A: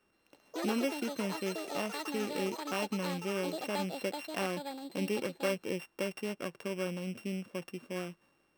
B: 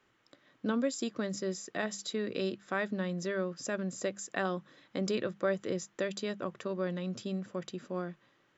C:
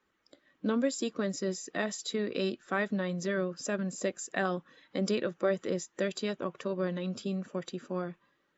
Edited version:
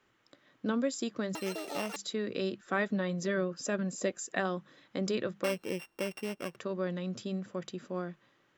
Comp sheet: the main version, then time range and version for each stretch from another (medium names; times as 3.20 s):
B
1.35–1.96 s: from A
2.61–4.40 s: from C
5.44–6.56 s: from A